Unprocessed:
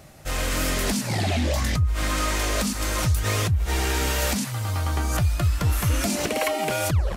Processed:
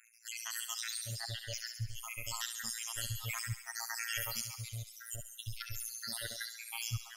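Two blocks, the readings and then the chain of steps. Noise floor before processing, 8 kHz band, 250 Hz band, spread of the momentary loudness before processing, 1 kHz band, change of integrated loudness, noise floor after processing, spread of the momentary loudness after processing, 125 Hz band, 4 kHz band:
-31 dBFS, -10.0 dB, -30.5 dB, 3 LU, -20.5 dB, -15.0 dB, -55 dBFS, 7 LU, -20.5 dB, -10.5 dB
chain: random holes in the spectrogram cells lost 83%; robot voice 115 Hz; amplifier tone stack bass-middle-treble 10-0-10; on a send: feedback echo behind a high-pass 68 ms, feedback 64%, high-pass 1.8 kHz, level -7.5 dB

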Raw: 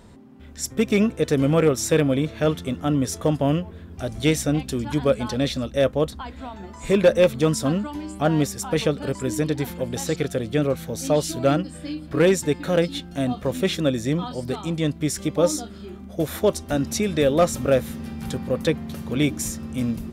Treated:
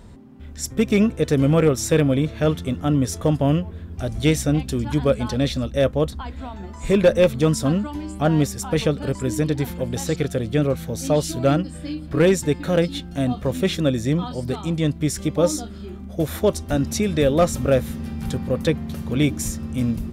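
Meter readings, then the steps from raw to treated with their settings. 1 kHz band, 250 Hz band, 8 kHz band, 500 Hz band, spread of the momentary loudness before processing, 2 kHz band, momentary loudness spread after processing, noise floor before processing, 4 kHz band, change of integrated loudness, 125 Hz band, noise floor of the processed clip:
0.0 dB, +2.0 dB, 0.0 dB, +0.5 dB, 11 LU, 0.0 dB, 10 LU, -41 dBFS, 0.0 dB, +1.5 dB, +4.0 dB, -37 dBFS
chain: bass shelf 120 Hz +9.5 dB

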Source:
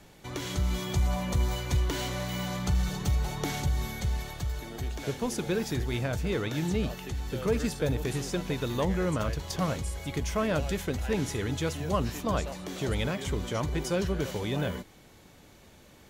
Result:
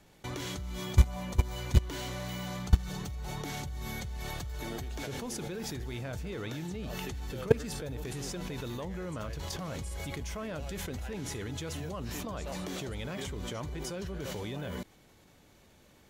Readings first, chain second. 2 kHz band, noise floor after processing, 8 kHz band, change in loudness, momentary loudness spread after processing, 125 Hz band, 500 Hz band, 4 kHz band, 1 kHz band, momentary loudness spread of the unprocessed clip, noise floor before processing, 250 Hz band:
-5.5 dB, -60 dBFS, -3.5 dB, -4.5 dB, 9 LU, -4.0 dB, -6.0 dB, -4.5 dB, -6.5 dB, 6 LU, -55 dBFS, -7.0 dB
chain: level held to a coarse grid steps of 23 dB; trim +8.5 dB

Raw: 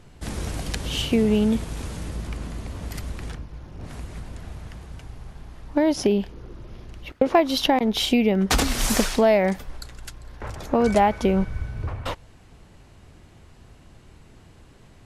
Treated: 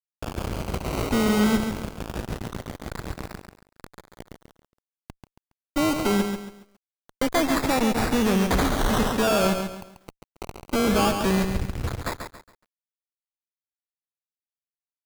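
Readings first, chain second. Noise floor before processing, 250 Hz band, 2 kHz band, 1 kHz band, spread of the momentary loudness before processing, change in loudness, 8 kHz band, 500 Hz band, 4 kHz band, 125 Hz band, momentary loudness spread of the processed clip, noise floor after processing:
-50 dBFS, -1.0 dB, +1.0 dB, -1.5 dB, 21 LU, -1.5 dB, -2.0 dB, -3.5 dB, -3.5 dB, -0.5 dB, 16 LU, under -85 dBFS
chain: Chebyshev shaper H 3 -12 dB, 4 -22 dB, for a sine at -5.5 dBFS; decimation with a swept rate 20×, swing 60% 0.22 Hz; fuzz box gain 42 dB, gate -40 dBFS; bit-crushed delay 138 ms, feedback 35%, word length 8-bit, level -6.5 dB; trim -6 dB

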